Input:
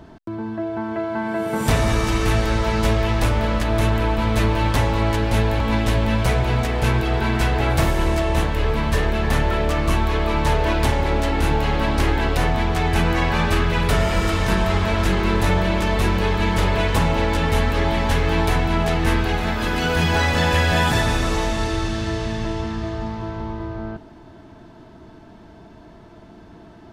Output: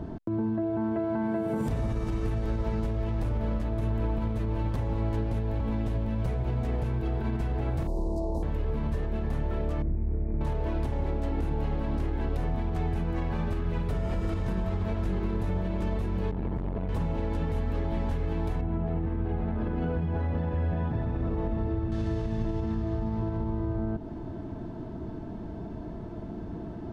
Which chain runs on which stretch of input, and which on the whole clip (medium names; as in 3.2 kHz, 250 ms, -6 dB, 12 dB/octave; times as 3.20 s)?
7.87–8.43 s: inverse Chebyshev band-stop 1.4–3.1 kHz + peaking EQ 100 Hz -12.5 dB 0.99 oct + loudspeaker Doppler distortion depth 0.1 ms
9.82–10.41 s: median filter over 41 samples + brick-wall FIR low-pass 2.5 kHz + peaking EQ 1.1 kHz -8 dB 2.9 oct
16.31–16.89 s: low-pass 1.1 kHz 6 dB/octave + transformer saturation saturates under 320 Hz
18.61–21.92 s: high-pass 44 Hz 24 dB/octave + tape spacing loss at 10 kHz 38 dB
whole clip: tilt shelf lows +8.5 dB, about 890 Hz; compression 5:1, threshold -26 dBFS; peak limiter -21 dBFS